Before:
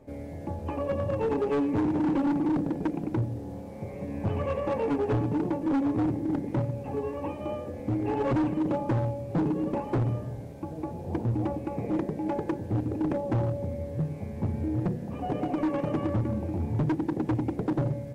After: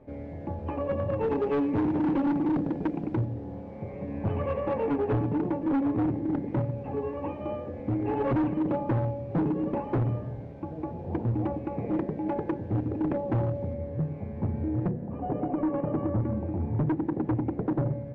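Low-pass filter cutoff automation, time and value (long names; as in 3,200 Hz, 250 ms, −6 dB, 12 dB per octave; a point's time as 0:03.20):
2,700 Hz
from 0:01.24 3,500 Hz
from 0:03.25 2,600 Hz
from 0:13.73 2,000 Hz
from 0:14.91 1,200 Hz
from 0:16.20 1,700 Hz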